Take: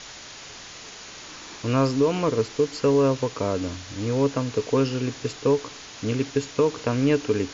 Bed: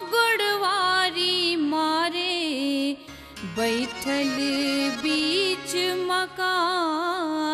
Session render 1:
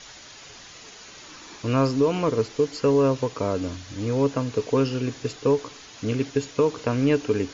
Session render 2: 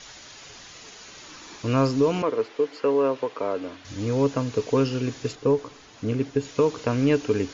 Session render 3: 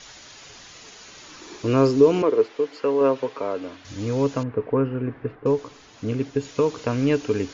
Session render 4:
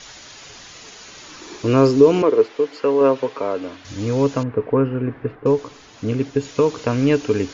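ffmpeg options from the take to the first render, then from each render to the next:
ffmpeg -i in.wav -af "afftdn=noise_reduction=6:noise_floor=-42" out.wav
ffmpeg -i in.wav -filter_complex "[0:a]asettb=1/sr,asplit=3[link_01][link_02][link_03];[link_01]atrim=end=2.224[link_04];[link_02]atrim=start=2.22:end=3.85,asetpts=PTS-STARTPTS,afade=type=in:duration=0.004:curve=qsin,afade=type=out:start_time=1.626:duration=0.004:curve=qsin,acrossover=split=280 3600:gain=0.1 1 0.141[link_05][link_06][link_07];[link_05][link_06][link_07]amix=inputs=3:normalize=0[link_08];[link_03]atrim=start=3.846[link_09];[link_04][link_08]acrossfade=duration=0.004:curve1=hsin:curve2=qsin[link_10];[link_10][link_09]acrossfade=duration=0.004:curve1=qsin:curve2=hsin,asettb=1/sr,asplit=3[link_11][link_12][link_13];[link_11]atrim=end=5.354[link_14];[link_12]atrim=start=5.35:end=6.45,asetpts=PTS-STARTPTS,afade=type=in:duration=0.004:curve=qsin,afade=type=out:start_time=1.096:duration=0.004:curve=qsin,highshelf=frequency=2000:gain=-8.5[link_15];[link_13]atrim=start=6.446[link_16];[link_14][link_15]acrossfade=duration=0.004:curve1=hsin:curve2=qsin[link_17];[link_17][link_16]acrossfade=duration=0.004:curve1=qsin:curve2=hsin" out.wav
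ffmpeg -i in.wav -filter_complex "[0:a]asettb=1/sr,asplit=3[link_01][link_02][link_03];[link_01]atrim=end=1.394[link_04];[link_02]atrim=start=1.39:end=2.47,asetpts=PTS-STARTPTS,afade=type=in:duration=0.004:curve=qsin,afade=type=out:start_time=1.076:duration=0.004:curve=qsin,equalizer=frequency=380:width_type=o:width=0.59:gain=10.5[link_05];[link_03]atrim=start=2.466[link_06];[link_04][link_05]acrossfade=duration=0.004:curve1=hsin:curve2=qsin[link_07];[link_07][link_06]acrossfade=duration=0.004:curve1=qsin:curve2=hsin,asettb=1/sr,asplit=3[link_08][link_09][link_10];[link_08]atrim=end=3.004[link_11];[link_09]atrim=start=3:end=3.4,asetpts=PTS-STARTPTS,afade=type=in:duration=0.004:curve=qsin,afade=type=out:start_time=0.396:duration=0.004:curve=qsin,aecho=1:1:7.4:0.63,atrim=end_sample=17640[link_12];[link_10]atrim=start=3.396[link_13];[link_11][link_12]acrossfade=duration=0.004:curve1=hsin:curve2=qsin[link_14];[link_14][link_13]acrossfade=duration=0.004:curve1=qsin:curve2=hsin,asettb=1/sr,asplit=3[link_15][link_16][link_17];[link_15]atrim=end=4.434[link_18];[link_16]atrim=start=4.43:end=5.46,asetpts=PTS-STARTPTS,afade=type=in:duration=0.004:curve=qsin,afade=type=out:start_time=1.026:duration=0.004:curve=qsin,lowpass=frequency=1900:width=0.5412,lowpass=frequency=1900:width=1.3066[link_19];[link_17]atrim=start=5.456[link_20];[link_18][link_19]acrossfade=duration=0.004:curve1=hsin:curve2=qsin[link_21];[link_21][link_20]acrossfade=duration=0.004:curve1=qsin:curve2=hsin" out.wav
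ffmpeg -i in.wav -af "volume=4dB,alimiter=limit=-2dB:level=0:latency=1" out.wav

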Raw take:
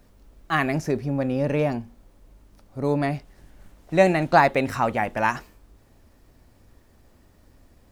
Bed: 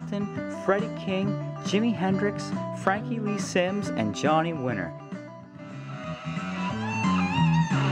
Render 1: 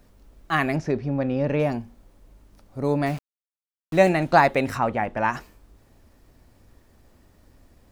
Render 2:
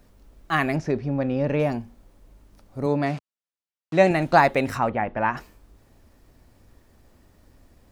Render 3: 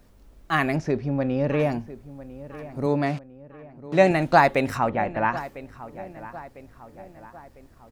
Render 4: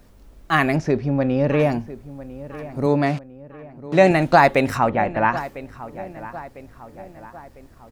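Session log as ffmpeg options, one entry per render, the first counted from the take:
ffmpeg -i in.wav -filter_complex "[0:a]asettb=1/sr,asplit=3[link_01][link_02][link_03];[link_01]atrim=end=0.764[link_04];[link_02]atrim=start=0.76:end=1.6,asetpts=PTS-STARTPTS,afade=type=in:duration=0.004:curve=qsin,afade=type=out:start_time=0.836:duration=0.004:curve=qsin,lowpass=4500[link_05];[link_03]atrim=start=1.596[link_06];[link_04][link_05]acrossfade=duration=0.004:curve1=hsin:curve2=qsin[link_07];[link_07][link_06]acrossfade=duration=0.004:curve1=qsin:curve2=hsin,asettb=1/sr,asplit=3[link_08][link_09][link_10];[link_08]atrim=end=3.064[link_11];[link_09]atrim=start=3.06:end=4.09,asetpts=PTS-STARTPTS,afade=type=in:duration=0.004:curve=qsin,afade=type=out:start_time=1.026:duration=0.004:curve=qsin,aeval=exprs='val(0)*gte(abs(val(0)),0.0158)':channel_layout=same[link_12];[link_10]atrim=start=4.086[link_13];[link_11][link_12]acrossfade=duration=0.004:curve1=hsin:curve2=qsin[link_14];[link_14][link_13]acrossfade=duration=0.004:curve1=qsin:curve2=hsin,asplit=3[link_15][link_16][link_17];[link_15]afade=type=out:start_time=4.77:duration=0.02[link_18];[link_16]lowpass=frequency=2100:poles=1,afade=type=in:start_time=4.77:duration=0.02,afade=type=out:start_time=5.32:duration=0.02[link_19];[link_17]afade=type=in:start_time=5.32:duration=0.02[link_20];[link_18][link_19][link_20]amix=inputs=3:normalize=0" out.wav
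ffmpeg -i in.wav -filter_complex "[0:a]asettb=1/sr,asplit=3[link_01][link_02][link_03];[link_01]atrim=end=2.864[link_04];[link_02]atrim=start=2.86:end=4.11,asetpts=PTS-STARTPTS,afade=type=in:duration=0.004:curve=qsin,afade=type=out:start_time=1.246:duration=0.004:curve=qsin,highpass=100,lowpass=6500[link_05];[link_03]atrim=start=4.106[link_06];[link_04][link_05]acrossfade=duration=0.004:curve1=hsin:curve2=qsin[link_07];[link_07][link_06]acrossfade=duration=0.004:curve1=qsin:curve2=hsin,asplit=3[link_08][link_09][link_10];[link_08]afade=type=out:start_time=4.89:duration=0.02[link_11];[link_09]lowpass=3000,afade=type=in:start_time=4.89:duration=0.02,afade=type=out:start_time=5.36:duration=0.02[link_12];[link_10]afade=type=in:start_time=5.36:duration=0.02[link_13];[link_11][link_12][link_13]amix=inputs=3:normalize=0" out.wav
ffmpeg -i in.wav -filter_complex "[0:a]asplit=2[link_01][link_02];[link_02]adelay=1001,lowpass=frequency=2400:poles=1,volume=-16dB,asplit=2[link_03][link_04];[link_04]adelay=1001,lowpass=frequency=2400:poles=1,volume=0.51,asplit=2[link_05][link_06];[link_06]adelay=1001,lowpass=frequency=2400:poles=1,volume=0.51,asplit=2[link_07][link_08];[link_08]adelay=1001,lowpass=frequency=2400:poles=1,volume=0.51,asplit=2[link_09][link_10];[link_10]adelay=1001,lowpass=frequency=2400:poles=1,volume=0.51[link_11];[link_01][link_03][link_05][link_07][link_09][link_11]amix=inputs=6:normalize=0" out.wav
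ffmpeg -i in.wav -af "volume=4.5dB,alimiter=limit=-2dB:level=0:latency=1" out.wav

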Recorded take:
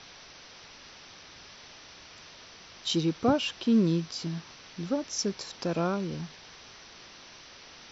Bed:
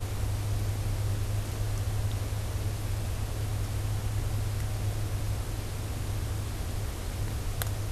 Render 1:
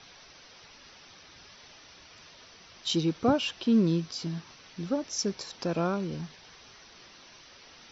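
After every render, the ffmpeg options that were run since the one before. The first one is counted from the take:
ffmpeg -i in.wav -af "afftdn=noise_reduction=6:noise_floor=-51" out.wav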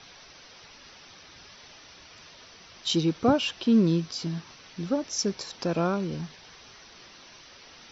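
ffmpeg -i in.wav -af "volume=2.5dB" out.wav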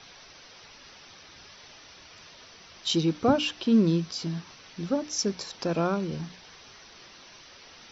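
ffmpeg -i in.wav -af "bandreject=frequency=60:width_type=h:width=6,bandreject=frequency=120:width_type=h:width=6,bandreject=frequency=180:width_type=h:width=6,bandreject=frequency=240:width_type=h:width=6,bandreject=frequency=300:width_type=h:width=6" out.wav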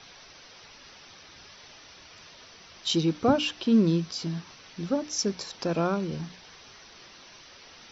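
ffmpeg -i in.wav -af anull out.wav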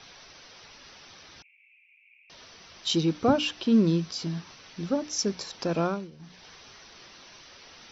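ffmpeg -i in.wav -filter_complex "[0:a]asettb=1/sr,asplit=3[link_01][link_02][link_03];[link_01]atrim=end=1.424[link_04];[link_02]atrim=start=1.42:end=2.3,asetpts=PTS-STARTPTS,afade=type=in:duration=0.004:curve=qsin,afade=type=out:start_time=0.876:duration=0.004:curve=qsin,asuperpass=centerf=2400:order=8:qfactor=4.3[link_05];[link_03]atrim=start=2.296[link_06];[link_04][link_05]acrossfade=duration=0.004:curve1=hsin:curve2=qsin[link_07];[link_07][link_06]acrossfade=duration=0.004:curve1=qsin:curve2=hsin,asplit=3[link_08][link_09][link_10];[link_08]atrim=end=6.11,asetpts=PTS-STARTPTS,afade=type=out:start_time=5.84:duration=0.27:silence=0.141254[link_11];[link_09]atrim=start=6.11:end=6.18,asetpts=PTS-STARTPTS,volume=-17dB[link_12];[link_10]atrim=start=6.18,asetpts=PTS-STARTPTS,afade=type=in:duration=0.27:silence=0.141254[link_13];[link_11][link_12][link_13]concat=n=3:v=0:a=1" out.wav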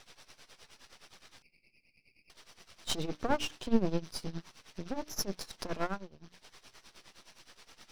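ffmpeg -i in.wav -af "aeval=exprs='max(val(0),0)':channel_layout=same,tremolo=f=9.6:d=0.84" out.wav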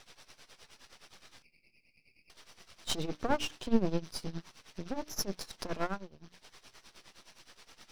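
ffmpeg -i in.wav -filter_complex "[0:a]asettb=1/sr,asplit=3[link_01][link_02][link_03];[link_01]atrim=end=1.084[link_04];[link_02]atrim=start=1.08:end=2.74,asetpts=PTS-STARTPTS,afade=type=in:duration=0.004:curve=qsin,afade=type=out:start_time=1.656:duration=0.004:curve=qsin,asplit=2[link_05][link_06];[link_06]adelay=26,volume=-13dB[link_07];[link_05][link_07]amix=inputs=2:normalize=0,atrim=end_sample=73206[link_08];[link_03]atrim=start=2.736[link_09];[link_04][link_08]acrossfade=duration=0.004:curve1=hsin:curve2=qsin[link_10];[link_10][link_09]acrossfade=duration=0.004:curve1=qsin:curve2=hsin" out.wav

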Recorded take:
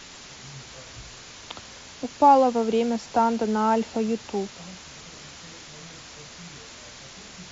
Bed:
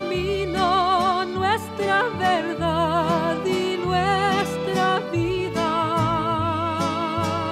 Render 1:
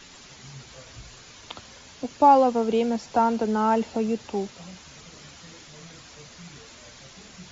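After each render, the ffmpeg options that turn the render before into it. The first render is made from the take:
ffmpeg -i in.wav -af "afftdn=noise_reduction=6:noise_floor=-44" out.wav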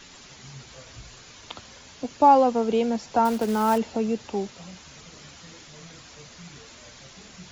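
ffmpeg -i in.wav -filter_complex "[0:a]asettb=1/sr,asplit=3[link_01][link_02][link_03];[link_01]atrim=end=3.254[link_04];[link_02]atrim=start=3.25:end=3.78,asetpts=PTS-STARTPTS,afade=type=in:duration=0.004:curve=qsin,afade=type=out:start_time=0.526:duration=0.004:curve=qsin,acrusher=bits=4:mode=log:mix=0:aa=0.000001[link_05];[link_03]atrim=start=3.776[link_06];[link_04][link_05]acrossfade=duration=0.004:curve1=hsin:curve2=qsin[link_07];[link_07][link_06]acrossfade=duration=0.004:curve1=qsin:curve2=hsin" out.wav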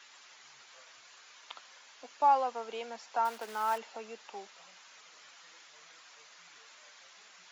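ffmpeg -i in.wav -af "highpass=1200,highshelf=frequency=2100:gain=-11" out.wav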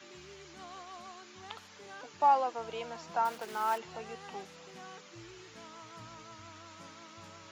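ffmpeg -i in.wav -i bed.wav -filter_complex "[1:a]volume=-29dB[link_01];[0:a][link_01]amix=inputs=2:normalize=0" out.wav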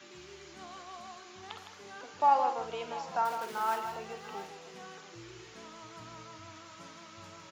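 ffmpeg -i in.wav -filter_complex "[0:a]asplit=2[link_01][link_02];[link_02]adelay=50,volume=-10.5dB[link_03];[link_01][link_03]amix=inputs=2:normalize=0,asplit=2[link_04][link_05];[link_05]aecho=0:1:160|690:0.376|0.133[link_06];[link_04][link_06]amix=inputs=2:normalize=0" out.wav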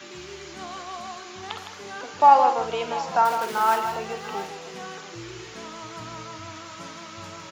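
ffmpeg -i in.wav -af "volume=10.5dB" out.wav

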